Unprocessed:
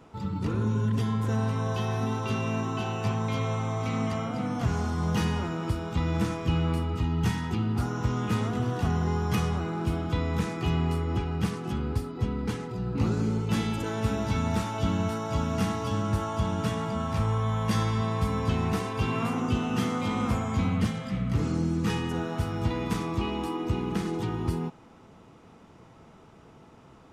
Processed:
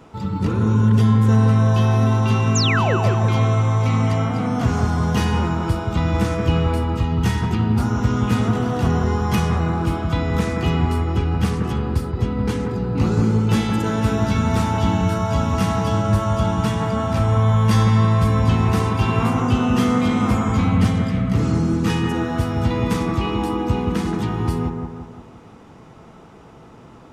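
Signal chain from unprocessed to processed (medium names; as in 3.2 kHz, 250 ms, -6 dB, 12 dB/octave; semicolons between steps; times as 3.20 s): painted sound fall, 2.55–2.97 s, 320–7600 Hz -29 dBFS; bucket-brigade echo 174 ms, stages 2048, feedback 50%, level -4.5 dB; trim +7 dB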